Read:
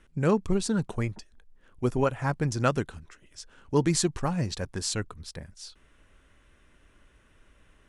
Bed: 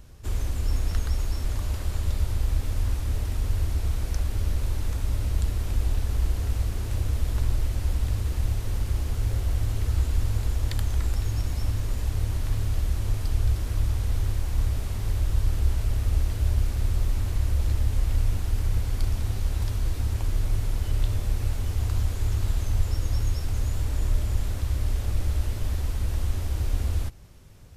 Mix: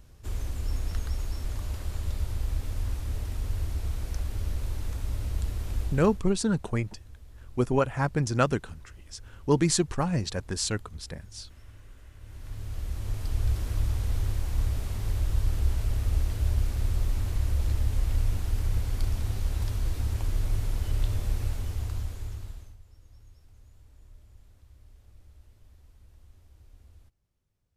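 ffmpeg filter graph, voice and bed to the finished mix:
-filter_complex "[0:a]adelay=5750,volume=1dB[a];[1:a]volume=16dB,afade=t=out:st=5.8:d=0.47:silence=0.11885,afade=t=in:st=12.19:d=1.39:silence=0.0891251,afade=t=out:st=21.34:d=1.43:silence=0.0501187[b];[a][b]amix=inputs=2:normalize=0"

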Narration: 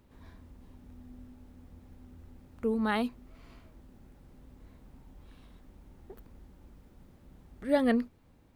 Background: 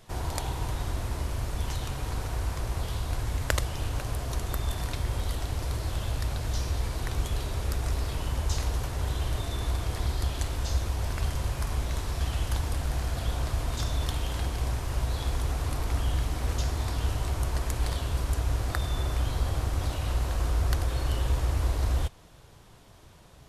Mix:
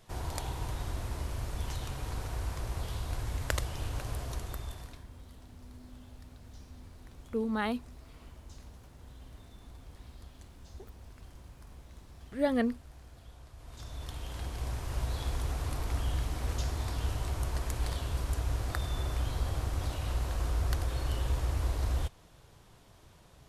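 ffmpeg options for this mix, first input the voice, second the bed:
-filter_complex "[0:a]adelay=4700,volume=-2.5dB[a];[1:a]volume=13dB,afade=t=out:st=4.2:d=0.85:silence=0.133352,afade=t=in:st=13.56:d=1.45:silence=0.125893[b];[a][b]amix=inputs=2:normalize=0"

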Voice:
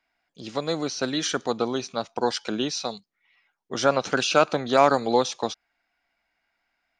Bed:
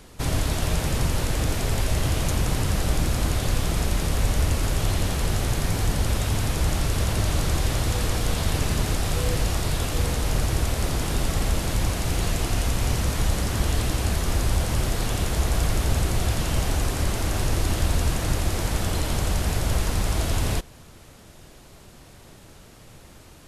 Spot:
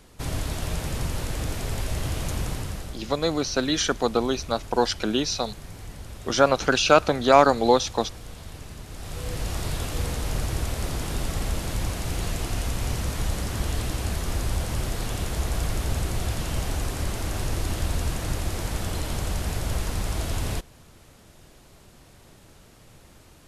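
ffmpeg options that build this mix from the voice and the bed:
-filter_complex "[0:a]adelay=2550,volume=2.5dB[a];[1:a]volume=7.5dB,afade=t=out:st=2.43:d=0.55:silence=0.266073,afade=t=in:st=8.89:d=0.74:silence=0.237137[b];[a][b]amix=inputs=2:normalize=0"

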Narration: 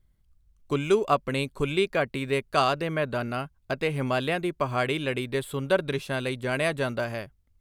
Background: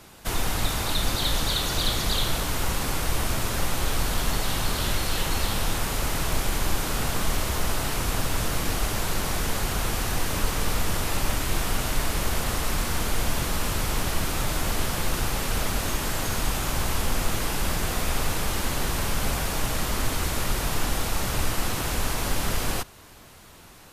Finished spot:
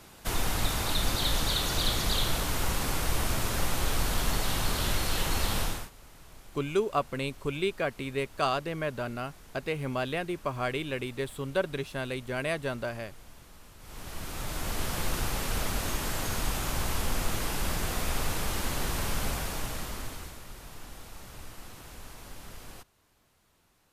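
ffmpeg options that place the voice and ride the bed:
-filter_complex "[0:a]adelay=5850,volume=-5dB[a];[1:a]volume=18.5dB,afade=t=out:st=5.6:d=0.3:silence=0.0707946,afade=t=in:st=13.79:d=1.21:silence=0.0841395,afade=t=out:st=19.16:d=1.24:silence=0.177828[b];[a][b]amix=inputs=2:normalize=0"

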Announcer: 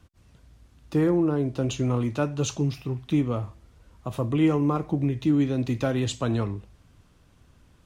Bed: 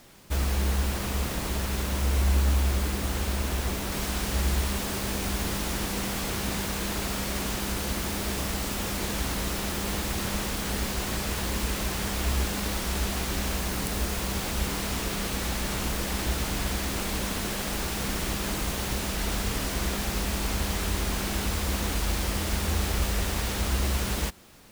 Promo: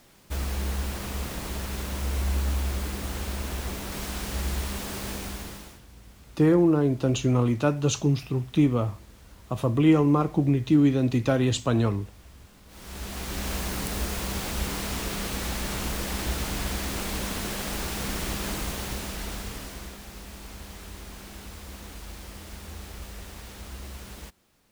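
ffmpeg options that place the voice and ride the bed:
-filter_complex "[0:a]adelay=5450,volume=2.5dB[a];[1:a]volume=21dB,afade=t=out:st=5.1:d=0.71:silence=0.0794328,afade=t=in:st=12.67:d=0.89:silence=0.0595662,afade=t=out:st=18.48:d=1.5:silence=0.237137[b];[a][b]amix=inputs=2:normalize=0"

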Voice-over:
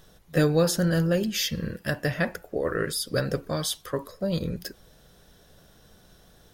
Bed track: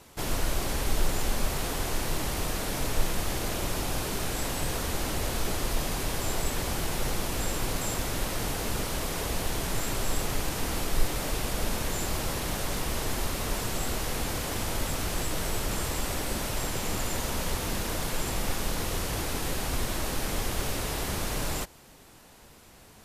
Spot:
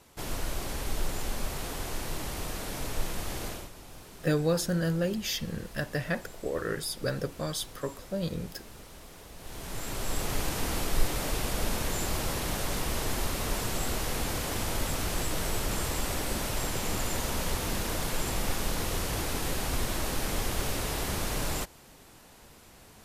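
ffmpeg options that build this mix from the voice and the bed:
-filter_complex "[0:a]adelay=3900,volume=-5dB[a];[1:a]volume=12dB,afade=t=out:st=3.46:d=0.24:silence=0.237137,afade=t=in:st=9.37:d=1.04:silence=0.141254[b];[a][b]amix=inputs=2:normalize=0"

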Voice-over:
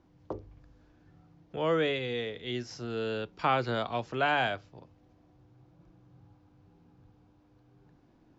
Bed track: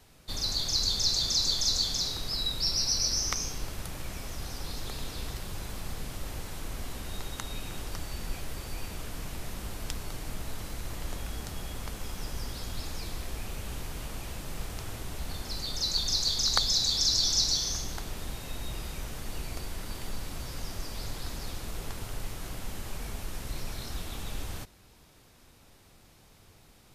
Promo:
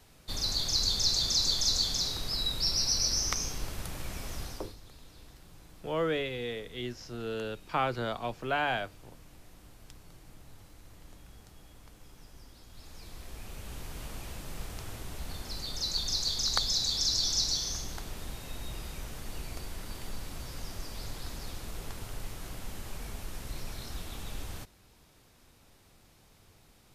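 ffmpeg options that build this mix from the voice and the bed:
-filter_complex "[0:a]adelay=4300,volume=-2.5dB[a];[1:a]volume=13dB,afade=t=out:st=4.38:d=0.38:silence=0.158489,afade=t=in:st=12.67:d=1.39:silence=0.211349[b];[a][b]amix=inputs=2:normalize=0"

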